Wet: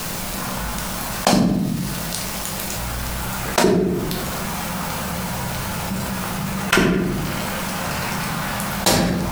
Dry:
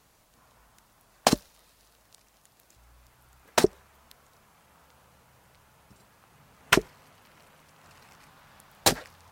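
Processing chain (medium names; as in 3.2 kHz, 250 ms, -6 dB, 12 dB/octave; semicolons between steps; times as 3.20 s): peaking EQ 190 Hz +10.5 dB 0.32 oct; bit crusher 10-bit; reverberation RT60 0.55 s, pre-delay 6 ms, DRR -0.5 dB; level flattener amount 70%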